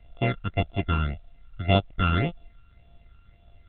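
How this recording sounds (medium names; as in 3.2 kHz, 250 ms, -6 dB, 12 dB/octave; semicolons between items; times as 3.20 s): a buzz of ramps at a fixed pitch in blocks of 64 samples; phasing stages 12, 1.8 Hz, lowest notch 630–1900 Hz; A-law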